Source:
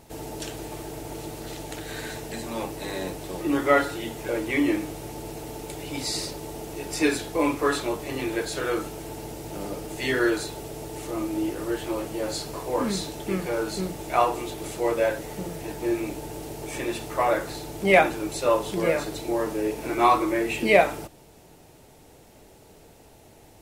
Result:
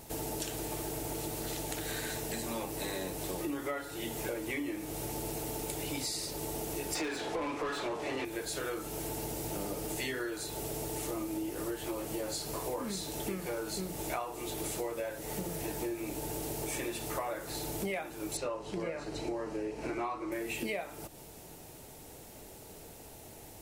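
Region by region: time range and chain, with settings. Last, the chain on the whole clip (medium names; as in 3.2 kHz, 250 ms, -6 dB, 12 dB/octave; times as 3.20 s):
6.95–8.25 s: low-pass 7.9 kHz + overdrive pedal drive 24 dB, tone 1.5 kHz, clips at -9 dBFS
18.37–20.32 s: distance through air 100 m + band-stop 3.5 kHz, Q 8.7
whole clip: treble shelf 7.6 kHz +10 dB; compression 16:1, threshold -33 dBFS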